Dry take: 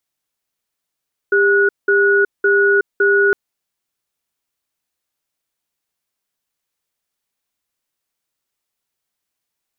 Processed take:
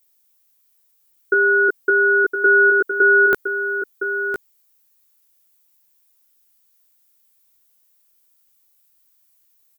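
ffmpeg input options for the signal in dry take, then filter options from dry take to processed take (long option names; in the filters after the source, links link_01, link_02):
-f lavfi -i "aevalsrc='0.224*(sin(2*PI*400*t)+sin(2*PI*1460*t))*clip(min(mod(t,0.56),0.37-mod(t,0.56))/0.005,0,1)':duration=2.01:sample_rate=44100"
-filter_complex "[0:a]aemphasis=mode=production:type=50fm,asplit=2[link_01][link_02];[link_02]adelay=16,volume=-2dB[link_03];[link_01][link_03]amix=inputs=2:normalize=0,asplit=2[link_04][link_05];[link_05]aecho=0:1:1013:0.422[link_06];[link_04][link_06]amix=inputs=2:normalize=0"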